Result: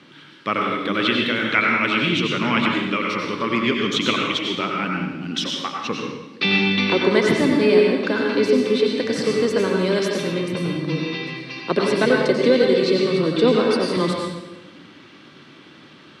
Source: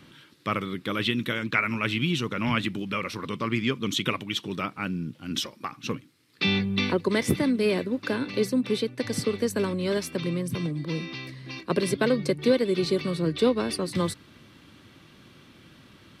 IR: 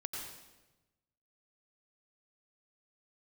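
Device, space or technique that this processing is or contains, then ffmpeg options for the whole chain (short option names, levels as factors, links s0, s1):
supermarket ceiling speaker: -filter_complex "[0:a]highpass=210,lowpass=5300[s0];[1:a]atrim=start_sample=2205[s1];[s0][s1]afir=irnorm=-1:irlink=0,asettb=1/sr,asplit=3[s2][s3][s4];[s2]atrim=end=9.794[s5];[s3]atrim=start=9.79:end=10.32,asetpts=PTS-STARTPTS,afade=t=in:d=0.004:c=qsin,afade=t=out:st=0.526:d=0.004:c=qsin,highshelf=f=9800:g=7.5[s6];[s4]atrim=start=10.316[s7];[s5][s6]acrossfade=d=0.004:c1=hsin:c2=qsin[s8];[s8][s7]acrossfade=d=0.004:c1=qsin:c2=hsin,volume=2.66"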